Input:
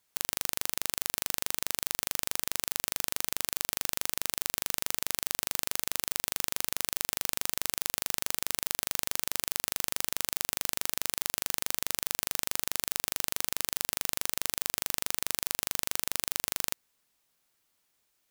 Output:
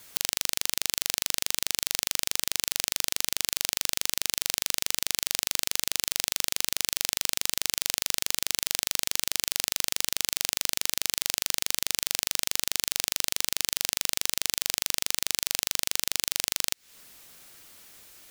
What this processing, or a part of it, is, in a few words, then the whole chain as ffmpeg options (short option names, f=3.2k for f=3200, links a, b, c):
mastering chain: -filter_complex "[0:a]equalizer=f=930:t=o:w=0.67:g=-3.5,acrossover=split=2100|7400[a][b][c];[a]acompressor=threshold=-52dB:ratio=4[d];[b]acompressor=threshold=-38dB:ratio=4[e];[c]acompressor=threshold=-42dB:ratio=4[f];[d][e][f]amix=inputs=3:normalize=0,acompressor=threshold=-44dB:ratio=6,alimiter=level_in=23.5dB:limit=-1dB:release=50:level=0:latency=1"